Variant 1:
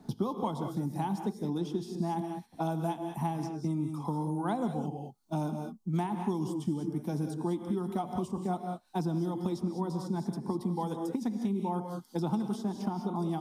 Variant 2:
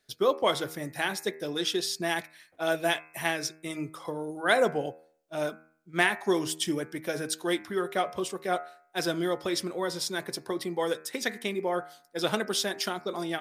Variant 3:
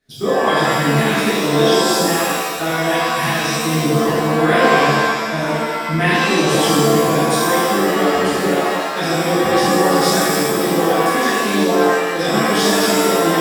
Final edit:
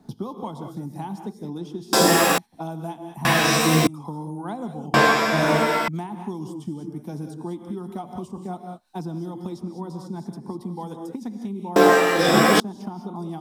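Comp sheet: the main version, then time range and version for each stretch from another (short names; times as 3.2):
1
1.93–2.38 from 3
3.25–3.87 from 3
4.94–5.88 from 3
11.76–12.6 from 3
not used: 2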